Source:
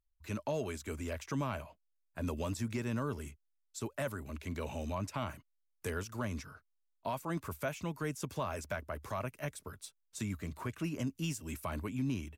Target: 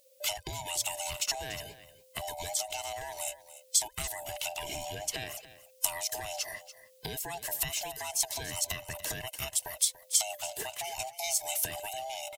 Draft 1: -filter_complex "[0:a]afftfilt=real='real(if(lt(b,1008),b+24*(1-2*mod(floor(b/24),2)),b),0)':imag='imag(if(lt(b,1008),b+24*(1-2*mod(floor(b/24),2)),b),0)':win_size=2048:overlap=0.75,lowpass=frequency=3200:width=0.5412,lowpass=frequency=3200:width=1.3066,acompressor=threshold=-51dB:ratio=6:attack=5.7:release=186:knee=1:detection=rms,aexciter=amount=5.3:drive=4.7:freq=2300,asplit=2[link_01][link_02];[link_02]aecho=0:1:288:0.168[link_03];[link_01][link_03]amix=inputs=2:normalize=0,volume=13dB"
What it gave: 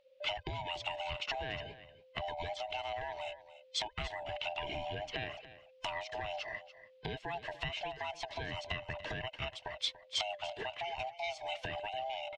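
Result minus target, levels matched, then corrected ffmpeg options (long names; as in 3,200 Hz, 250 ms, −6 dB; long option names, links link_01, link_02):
4,000 Hz band +3.5 dB
-filter_complex "[0:a]afftfilt=real='real(if(lt(b,1008),b+24*(1-2*mod(floor(b/24),2)),b),0)':imag='imag(if(lt(b,1008),b+24*(1-2*mod(floor(b/24),2)),b),0)':win_size=2048:overlap=0.75,acompressor=threshold=-51dB:ratio=6:attack=5.7:release=186:knee=1:detection=rms,aexciter=amount=5.3:drive=4.7:freq=2300,asplit=2[link_01][link_02];[link_02]aecho=0:1:288:0.168[link_03];[link_01][link_03]amix=inputs=2:normalize=0,volume=13dB"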